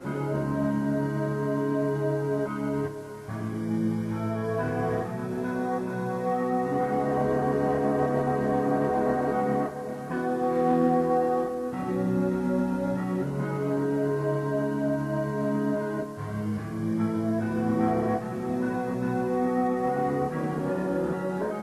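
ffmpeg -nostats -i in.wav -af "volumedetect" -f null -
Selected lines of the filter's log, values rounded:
mean_volume: -26.9 dB
max_volume: -11.3 dB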